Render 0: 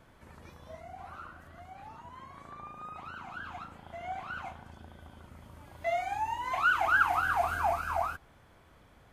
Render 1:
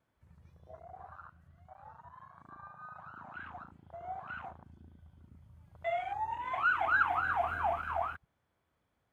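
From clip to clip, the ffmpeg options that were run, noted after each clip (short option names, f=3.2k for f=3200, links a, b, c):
-af "highpass=59,afwtdn=0.00891,volume=-3dB"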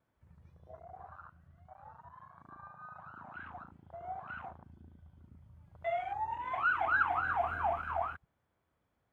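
-af "highshelf=f=3k:g=-7"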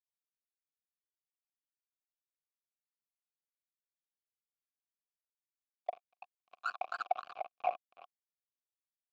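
-filter_complex "[0:a]afftfilt=real='hypot(re,im)*cos(2*PI*random(0))':imag='hypot(re,im)*sin(2*PI*random(1))':win_size=512:overlap=0.75,acrusher=bits=4:mix=0:aa=0.5,asplit=3[a][b][c];[a]bandpass=f=730:t=q:w=8,volume=0dB[d];[b]bandpass=f=1.09k:t=q:w=8,volume=-6dB[e];[c]bandpass=f=2.44k:t=q:w=8,volume=-9dB[f];[d][e][f]amix=inputs=3:normalize=0,volume=11dB"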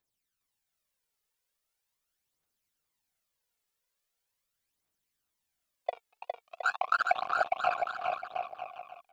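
-filter_complex "[0:a]aphaser=in_gain=1:out_gain=1:delay=2.4:decay=0.68:speed=0.41:type=triangular,asplit=2[a][b];[b]aecho=0:1:410|717.5|948.1|1121|1251:0.631|0.398|0.251|0.158|0.1[c];[a][c]amix=inputs=2:normalize=0,volume=7.5dB"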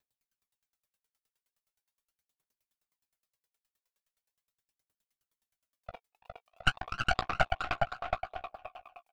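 -filter_complex "[0:a]aeval=exprs='0.237*(cos(1*acos(clip(val(0)/0.237,-1,1)))-cos(1*PI/2))+0.0841*(cos(4*acos(clip(val(0)/0.237,-1,1)))-cos(4*PI/2))':c=same,asplit=2[a][b];[b]adelay=16,volume=-5dB[c];[a][c]amix=inputs=2:normalize=0,aeval=exprs='val(0)*pow(10,-37*if(lt(mod(9.6*n/s,1),2*abs(9.6)/1000),1-mod(9.6*n/s,1)/(2*abs(9.6)/1000),(mod(9.6*n/s,1)-2*abs(9.6)/1000)/(1-2*abs(9.6)/1000))/20)':c=same,volume=5dB"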